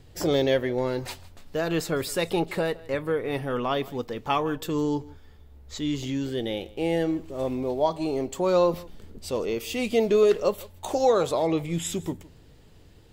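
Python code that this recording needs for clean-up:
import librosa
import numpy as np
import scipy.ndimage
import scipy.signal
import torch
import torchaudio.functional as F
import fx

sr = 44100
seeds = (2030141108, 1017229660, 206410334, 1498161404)

y = fx.fix_echo_inverse(x, sr, delay_ms=159, level_db=-21.5)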